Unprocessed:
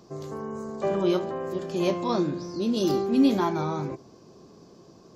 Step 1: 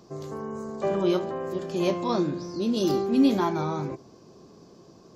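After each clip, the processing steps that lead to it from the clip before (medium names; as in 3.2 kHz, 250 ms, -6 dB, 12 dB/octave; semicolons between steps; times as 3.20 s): no audible change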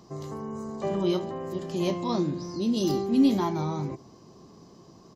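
comb 1 ms, depth 32%; dynamic bell 1.3 kHz, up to -6 dB, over -42 dBFS, Q 0.79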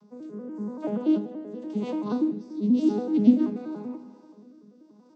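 vocoder on a broken chord minor triad, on G#3, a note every 96 ms; Schroeder reverb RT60 1.7 s, combs from 32 ms, DRR 12.5 dB; rotary cabinet horn 0.9 Hz; trim +3.5 dB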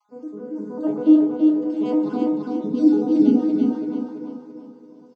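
random holes in the spectrogram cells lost 32%; on a send: feedback delay 336 ms, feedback 40%, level -3 dB; on the sum: FDN reverb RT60 0.49 s, low-frequency decay 0.9×, high-frequency decay 0.3×, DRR -1 dB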